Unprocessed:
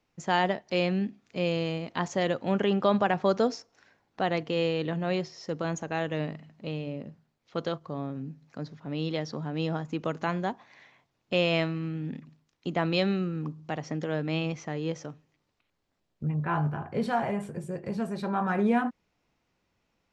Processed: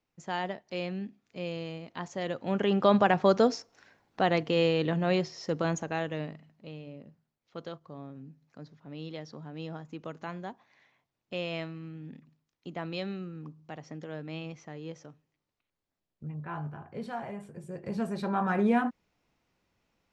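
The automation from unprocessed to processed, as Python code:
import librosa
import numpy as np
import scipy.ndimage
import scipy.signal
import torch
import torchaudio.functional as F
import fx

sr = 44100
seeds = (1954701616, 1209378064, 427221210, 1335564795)

y = fx.gain(x, sr, db=fx.line((2.13, -8.0), (2.92, 2.0), (5.66, 2.0), (6.65, -9.5), (17.51, -9.5), (17.99, -0.5)))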